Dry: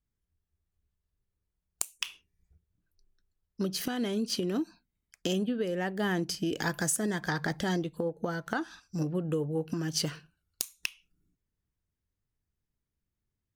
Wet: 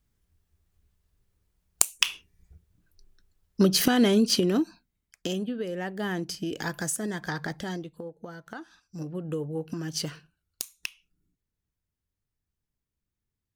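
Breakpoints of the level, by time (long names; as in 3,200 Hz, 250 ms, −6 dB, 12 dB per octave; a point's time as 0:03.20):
0:04.05 +11 dB
0:05.36 −1 dB
0:07.40 −1 dB
0:08.16 −8.5 dB
0:08.71 −8.5 dB
0:09.35 −1 dB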